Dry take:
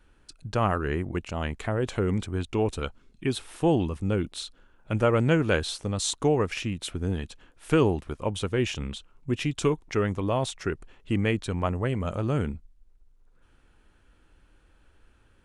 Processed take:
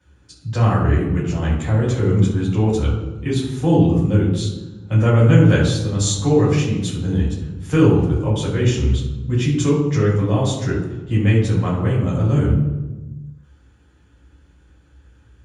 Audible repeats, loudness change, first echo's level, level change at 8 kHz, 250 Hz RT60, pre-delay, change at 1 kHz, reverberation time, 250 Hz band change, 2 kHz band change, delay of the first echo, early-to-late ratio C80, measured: no echo audible, +9.5 dB, no echo audible, +7.5 dB, 1.7 s, 3 ms, +3.5 dB, 1.2 s, +10.0 dB, +4.0 dB, no echo audible, 6.0 dB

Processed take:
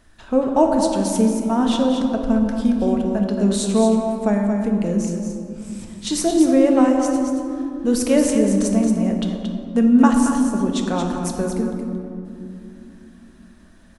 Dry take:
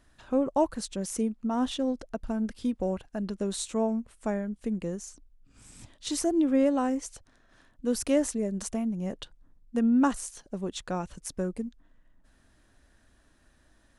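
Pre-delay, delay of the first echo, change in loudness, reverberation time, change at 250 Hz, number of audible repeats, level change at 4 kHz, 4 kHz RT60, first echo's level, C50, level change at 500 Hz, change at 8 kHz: 4 ms, 226 ms, +11.0 dB, 2.8 s, +12.0 dB, 1, +9.5 dB, 1.2 s, −7.0 dB, 2.0 dB, +10.5 dB, +8.5 dB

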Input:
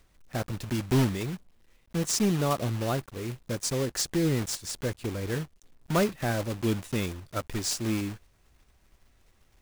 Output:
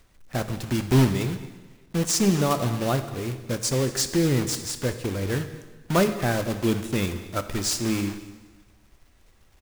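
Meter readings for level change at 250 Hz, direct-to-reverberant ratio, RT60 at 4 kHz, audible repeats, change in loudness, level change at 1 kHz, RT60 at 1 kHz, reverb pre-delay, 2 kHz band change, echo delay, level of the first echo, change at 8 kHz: +4.5 dB, 9.0 dB, 1.3 s, 1, +4.5 dB, +4.5 dB, 1.4 s, 6 ms, +4.5 dB, 227 ms, −21.0 dB, +4.5 dB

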